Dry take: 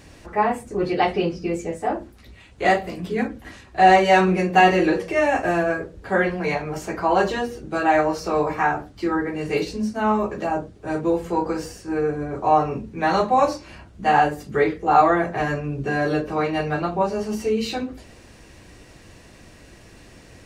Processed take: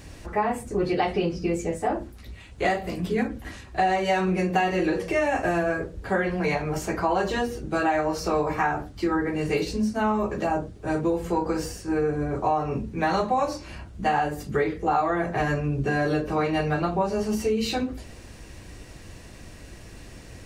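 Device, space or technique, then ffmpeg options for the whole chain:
ASMR close-microphone chain: -af "lowshelf=f=110:g=7.5,acompressor=threshold=0.1:ratio=6,highshelf=f=7100:g=4.5"

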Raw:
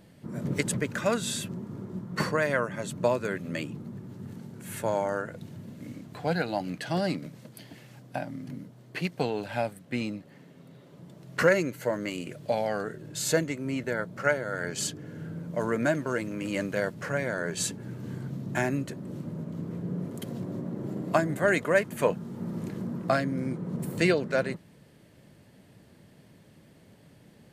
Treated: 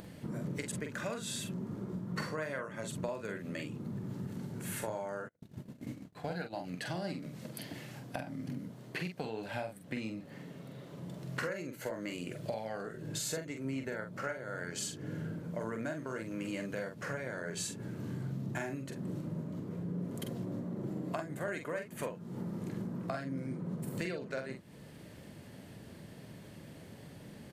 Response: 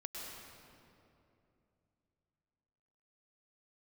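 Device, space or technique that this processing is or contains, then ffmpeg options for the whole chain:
upward and downward compression: -filter_complex "[0:a]acompressor=mode=upward:threshold=0.00316:ratio=2.5,acompressor=threshold=0.01:ratio=6,asplit=2[s0][s1];[s1]adelay=45,volume=0.501[s2];[s0][s2]amix=inputs=2:normalize=0,asplit=3[s3][s4][s5];[s3]afade=t=out:st=5.27:d=0.02[s6];[s4]agate=range=0.00891:threshold=0.00794:ratio=16:detection=peak,afade=t=in:st=5.27:d=0.02,afade=t=out:st=6.55:d=0.02[s7];[s5]afade=t=in:st=6.55:d=0.02[s8];[s6][s7][s8]amix=inputs=3:normalize=0,volume=1.41"

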